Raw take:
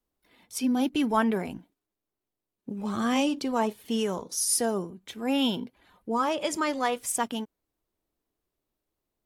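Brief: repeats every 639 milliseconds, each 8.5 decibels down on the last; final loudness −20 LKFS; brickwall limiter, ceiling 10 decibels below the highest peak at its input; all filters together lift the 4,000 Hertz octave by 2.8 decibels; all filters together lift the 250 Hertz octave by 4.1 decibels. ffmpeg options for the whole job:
ffmpeg -i in.wav -af "equalizer=frequency=250:width_type=o:gain=4.5,equalizer=frequency=4000:width_type=o:gain=4,alimiter=limit=-20dB:level=0:latency=1,aecho=1:1:639|1278|1917|2556:0.376|0.143|0.0543|0.0206,volume=9.5dB" out.wav

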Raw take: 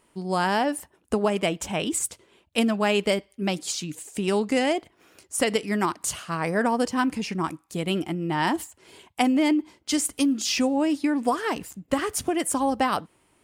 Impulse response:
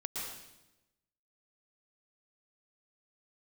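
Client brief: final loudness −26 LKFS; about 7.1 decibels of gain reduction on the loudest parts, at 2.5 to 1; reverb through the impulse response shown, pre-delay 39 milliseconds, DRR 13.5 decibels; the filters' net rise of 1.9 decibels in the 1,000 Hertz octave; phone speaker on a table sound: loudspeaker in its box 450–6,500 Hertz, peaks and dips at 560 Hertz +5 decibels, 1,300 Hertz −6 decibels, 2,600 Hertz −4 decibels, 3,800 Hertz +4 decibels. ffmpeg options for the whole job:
-filter_complex "[0:a]equalizer=frequency=1000:width_type=o:gain=3,acompressor=threshold=-28dB:ratio=2.5,asplit=2[link_01][link_02];[1:a]atrim=start_sample=2205,adelay=39[link_03];[link_02][link_03]afir=irnorm=-1:irlink=0,volume=-15dB[link_04];[link_01][link_04]amix=inputs=2:normalize=0,highpass=frequency=450:width=0.5412,highpass=frequency=450:width=1.3066,equalizer=frequency=560:width_type=q:width=4:gain=5,equalizer=frequency=1300:width_type=q:width=4:gain=-6,equalizer=frequency=2600:width_type=q:width=4:gain=-4,equalizer=frequency=3800:width_type=q:width=4:gain=4,lowpass=frequency=6500:width=0.5412,lowpass=frequency=6500:width=1.3066,volume=7dB"

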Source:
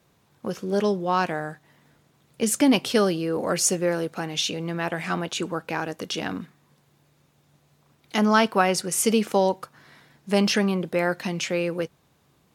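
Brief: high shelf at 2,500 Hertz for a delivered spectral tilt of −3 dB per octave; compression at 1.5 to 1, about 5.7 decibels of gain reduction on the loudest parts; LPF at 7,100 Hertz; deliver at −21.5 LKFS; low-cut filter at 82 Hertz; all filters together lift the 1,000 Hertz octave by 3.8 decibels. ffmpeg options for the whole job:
ffmpeg -i in.wav -af "highpass=82,lowpass=7100,equalizer=frequency=1000:width_type=o:gain=3.5,highshelf=frequency=2500:gain=8.5,acompressor=threshold=-28dB:ratio=1.5,volume=4.5dB" out.wav

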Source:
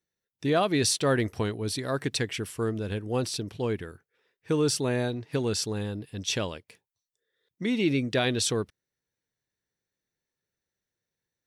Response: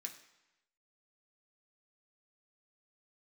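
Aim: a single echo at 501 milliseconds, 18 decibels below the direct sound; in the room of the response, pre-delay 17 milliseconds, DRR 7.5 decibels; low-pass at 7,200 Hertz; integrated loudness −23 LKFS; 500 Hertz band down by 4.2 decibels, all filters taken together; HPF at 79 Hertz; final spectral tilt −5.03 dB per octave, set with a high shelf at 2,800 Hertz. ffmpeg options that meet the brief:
-filter_complex "[0:a]highpass=79,lowpass=7200,equalizer=frequency=500:width_type=o:gain=-5,highshelf=frequency=2800:gain=-5.5,aecho=1:1:501:0.126,asplit=2[link_01][link_02];[1:a]atrim=start_sample=2205,adelay=17[link_03];[link_02][link_03]afir=irnorm=-1:irlink=0,volume=-3.5dB[link_04];[link_01][link_04]amix=inputs=2:normalize=0,volume=7.5dB"

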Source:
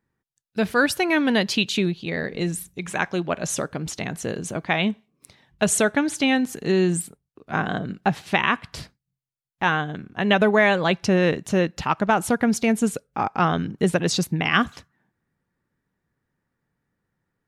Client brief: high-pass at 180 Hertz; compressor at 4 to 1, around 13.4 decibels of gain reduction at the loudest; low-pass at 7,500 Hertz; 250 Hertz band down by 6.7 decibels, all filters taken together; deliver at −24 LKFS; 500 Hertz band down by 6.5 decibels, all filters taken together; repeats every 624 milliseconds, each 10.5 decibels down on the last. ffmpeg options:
ffmpeg -i in.wav -af "highpass=180,lowpass=7500,equalizer=frequency=250:width_type=o:gain=-5,equalizer=frequency=500:width_type=o:gain=-7,acompressor=threshold=-33dB:ratio=4,aecho=1:1:624|1248|1872:0.299|0.0896|0.0269,volume=12dB" out.wav

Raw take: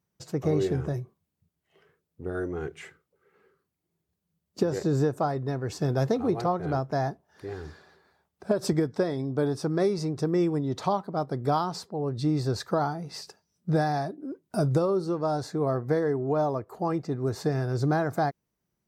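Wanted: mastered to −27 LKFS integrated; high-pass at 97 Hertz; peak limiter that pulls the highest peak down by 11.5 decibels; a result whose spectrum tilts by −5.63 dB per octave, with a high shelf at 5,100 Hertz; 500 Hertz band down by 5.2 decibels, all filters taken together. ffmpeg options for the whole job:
ffmpeg -i in.wav -af "highpass=97,equalizer=frequency=500:width_type=o:gain=-7,highshelf=frequency=5100:gain=7,volume=8dB,alimiter=limit=-16.5dB:level=0:latency=1" out.wav

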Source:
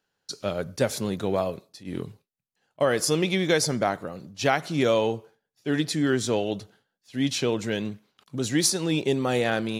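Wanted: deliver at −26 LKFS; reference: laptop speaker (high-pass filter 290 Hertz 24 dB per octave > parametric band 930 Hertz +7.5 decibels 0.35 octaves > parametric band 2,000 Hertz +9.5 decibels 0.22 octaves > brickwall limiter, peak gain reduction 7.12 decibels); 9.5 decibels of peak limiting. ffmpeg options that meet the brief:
ffmpeg -i in.wav -af "alimiter=limit=-17.5dB:level=0:latency=1,highpass=frequency=290:width=0.5412,highpass=frequency=290:width=1.3066,equalizer=frequency=930:width_type=o:width=0.35:gain=7.5,equalizer=frequency=2000:width_type=o:width=0.22:gain=9.5,volume=6dB,alimiter=limit=-15.5dB:level=0:latency=1" out.wav

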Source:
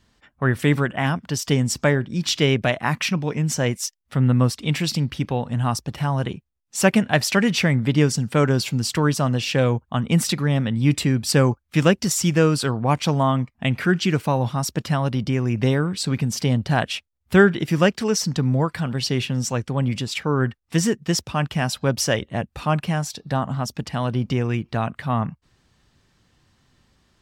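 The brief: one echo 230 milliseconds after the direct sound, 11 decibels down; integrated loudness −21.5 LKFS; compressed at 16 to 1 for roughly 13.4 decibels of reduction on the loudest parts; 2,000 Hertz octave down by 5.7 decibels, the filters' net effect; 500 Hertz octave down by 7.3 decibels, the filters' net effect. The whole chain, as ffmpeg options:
ffmpeg -i in.wav -af "equalizer=frequency=500:width_type=o:gain=-9,equalizer=frequency=2000:width_type=o:gain=-7,acompressor=threshold=-27dB:ratio=16,aecho=1:1:230:0.282,volume=10.5dB" out.wav

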